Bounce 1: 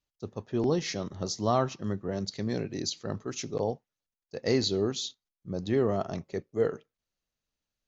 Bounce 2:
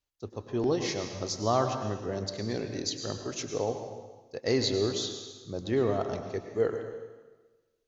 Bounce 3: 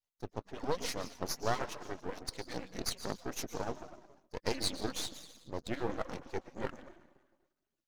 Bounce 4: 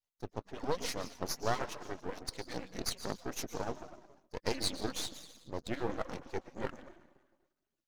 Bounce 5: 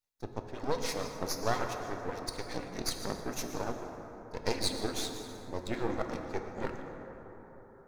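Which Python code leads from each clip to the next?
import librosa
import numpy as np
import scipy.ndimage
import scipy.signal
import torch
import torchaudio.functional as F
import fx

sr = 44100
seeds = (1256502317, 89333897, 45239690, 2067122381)

y1 = fx.peak_eq(x, sr, hz=180.0, db=-9.0, octaves=0.52)
y1 = fx.rev_plate(y1, sr, seeds[0], rt60_s=1.3, hf_ratio=0.95, predelay_ms=90, drr_db=6.0)
y2 = fx.hpss_only(y1, sr, part='percussive')
y2 = np.maximum(y2, 0.0)
y2 = F.gain(torch.from_numpy(y2), 1.0).numpy()
y3 = y2
y4 = fx.notch(y3, sr, hz=3000.0, q=11.0)
y4 = fx.rev_plate(y4, sr, seeds[1], rt60_s=4.6, hf_ratio=0.3, predelay_ms=0, drr_db=4.5)
y4 = F.gain(torch.from_numpy(y4), 1.5).numpy()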